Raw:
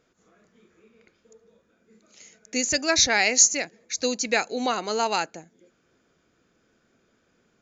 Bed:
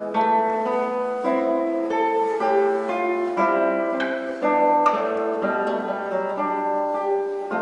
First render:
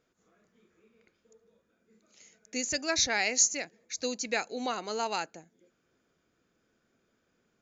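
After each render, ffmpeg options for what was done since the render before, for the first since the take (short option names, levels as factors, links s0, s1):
-af "volume=0.422"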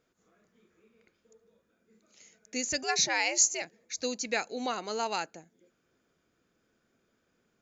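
-filter_complex "[0:a]asettb=1/sr,asplit=3[s0][s1][s2];[s0]atrim=end=2.834[s3];[s1]atrim=start=2.83:end=3.62,asetpts=PTS-STARTPTS,afade=t=in:d=0.004:c=qsin,afade=t=out:st=0.786:d=0.004:c=qsin,afreqshift=91[s4];[s2]atrim=start=3.616[s5];[s3][s4]acrossfade=d=0.004:c1=hsin:c2=qsin[s6];[s6][s5]acrossfade=d=0.004:c1=qsin:c2=hsin"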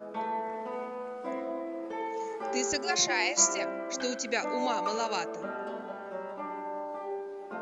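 -filter_complex "[1:a]volume=0.2[s0];[0:a][s0]amix=inputs=2:normalize=0"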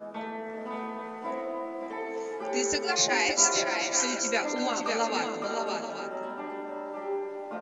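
-filter_complex "[0:a]asplit=2[s0][s1];[s1]adelay=13,volume=0.708[s2];[s0][s2]amix=inputs=2:normalize=0,aecho=1:1:561|704|829:0.562|0.106|0.282"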